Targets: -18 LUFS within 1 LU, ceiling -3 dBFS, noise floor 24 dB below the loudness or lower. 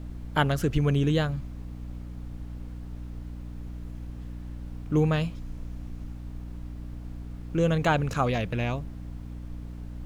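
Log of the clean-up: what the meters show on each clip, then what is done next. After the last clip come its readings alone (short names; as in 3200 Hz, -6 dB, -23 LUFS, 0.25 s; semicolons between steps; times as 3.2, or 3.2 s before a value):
hum 60 Hz; harmonics up to 300 Hz; hum level -36 dBFS; noise floor -39 dBFS; noise floor target -53 dBFS; loudness -28.5 LUFS; peak -9.0 dBFS; loudness target -18.0 LUFS
-> notches 60/120/180/240/300 Hz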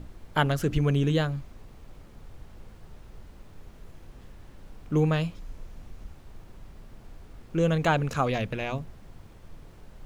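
hum none; noise floor -50 dBFS; noise floor target -51 dBFS
-> noise print and reduce 6 dB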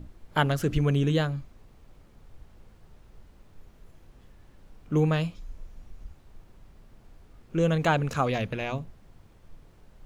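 noise floor -56 dBFS; loudness -27.0 LUFS; peak -9.0 dBFS; loudness target -18.0 LUFS
-> gain +9 dB; limiter -3 dBFS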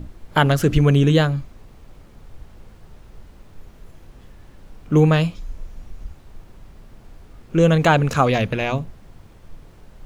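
loudness -18.0 LUFS; peak -3.0 dBFS; noise floor -47 dBFS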